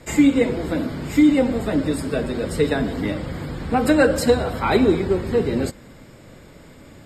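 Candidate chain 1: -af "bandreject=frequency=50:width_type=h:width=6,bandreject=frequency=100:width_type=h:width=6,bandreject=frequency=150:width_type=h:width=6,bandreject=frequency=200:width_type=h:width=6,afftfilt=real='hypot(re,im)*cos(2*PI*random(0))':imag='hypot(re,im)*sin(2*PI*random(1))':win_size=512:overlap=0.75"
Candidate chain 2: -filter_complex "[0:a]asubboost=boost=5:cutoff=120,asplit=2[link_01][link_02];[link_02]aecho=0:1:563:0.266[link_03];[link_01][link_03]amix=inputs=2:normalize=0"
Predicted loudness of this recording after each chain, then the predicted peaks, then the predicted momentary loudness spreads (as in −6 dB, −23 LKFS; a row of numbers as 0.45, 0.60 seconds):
−26.0, −20.5 LKFS; −6.5, −4.0 dBFS; 10, 8 LU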